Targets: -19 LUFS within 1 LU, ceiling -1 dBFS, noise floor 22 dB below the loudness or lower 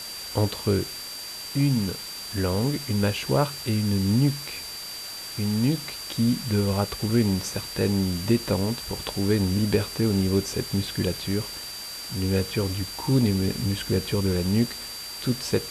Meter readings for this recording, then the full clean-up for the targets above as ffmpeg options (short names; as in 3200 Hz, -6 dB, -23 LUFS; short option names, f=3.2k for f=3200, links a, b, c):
steady tone 4700 Hz; tone level -36 dBFS; noise floor -37 dBFS; noise floor target -48 dBFS; loudness -26.0 LUFS; peak -9.5 dBFS; loudness target -19.0 LUFS
-> -af "bandreject=f=4.7k:w=30"
-af "afftdn=nr=11:nf=-37"
-af "volume=7dB"